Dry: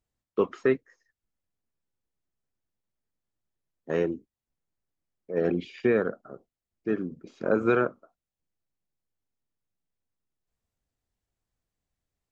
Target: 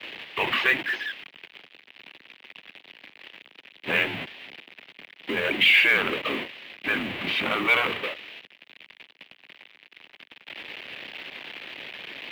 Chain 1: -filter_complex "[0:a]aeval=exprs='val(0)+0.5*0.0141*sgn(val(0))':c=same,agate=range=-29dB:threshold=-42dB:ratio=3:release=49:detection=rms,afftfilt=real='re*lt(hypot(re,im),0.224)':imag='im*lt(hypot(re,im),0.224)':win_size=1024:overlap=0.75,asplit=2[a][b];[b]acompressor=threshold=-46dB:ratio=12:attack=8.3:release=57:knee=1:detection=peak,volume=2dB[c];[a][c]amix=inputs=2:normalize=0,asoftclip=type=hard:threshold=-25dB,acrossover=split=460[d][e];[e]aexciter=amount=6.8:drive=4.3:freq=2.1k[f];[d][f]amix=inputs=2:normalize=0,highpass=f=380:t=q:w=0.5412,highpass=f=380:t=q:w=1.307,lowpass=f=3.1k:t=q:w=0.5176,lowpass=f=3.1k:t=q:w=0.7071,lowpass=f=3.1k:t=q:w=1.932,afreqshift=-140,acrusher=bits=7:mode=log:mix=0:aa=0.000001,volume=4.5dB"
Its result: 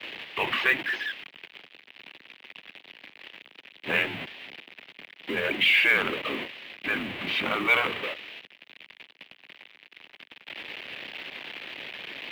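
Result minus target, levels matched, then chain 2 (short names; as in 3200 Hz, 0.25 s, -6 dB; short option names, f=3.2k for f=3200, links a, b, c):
compressor: peak gain reduction +8 dB
-filter_complex "[0:a]aeval=exprs='val(0)+0.5*0.0141*sgn(val(0))':c=same,agate=range=-29dB:threshold=-42dB:ratio=3:release=49:detection=rms,afftfilt=real='re*lt(hypot(re,im),0.224)':imag='im*lt(hypot(re,im),0.224)':win_size=1024:overlap=0.75,asplit=2[a][b];[b]acompressor=threshold=-37.5dB:ratio=12:attack=8.3:release=57:knee=1:detection=peak,volume=2dB[c];[a][c]amix=inputs=2:normalize=0,asoftclip=type=hard:threshold=-25dB,acrossover=split=460[d][e];[e]aexciter=amount=6.8:drive=4.3:freq=2.1k[f];[d][f]amix=inputs=2:normalize=0,highpass=f=380:t=q:w=0.5412,highpass=f=380:t=q:w=1.307,lowpass=f=3.1k:t=q:w=0.5176,lowpass=f=3.1k:t=q:w=0.7071,lowpass=f=3.1k:t=q:w=1.932,afreqshift=-140,acrusher=bits=7:mode=log:mix=0:aa=0.000001,volume=4.5dB"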